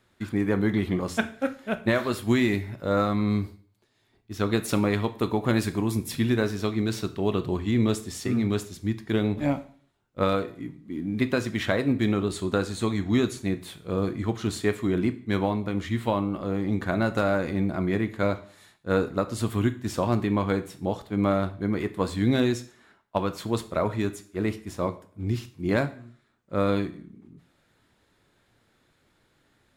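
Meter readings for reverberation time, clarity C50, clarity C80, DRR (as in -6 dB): 0.50 s, 15.5 dB, 19.5 dB, 10.0 dB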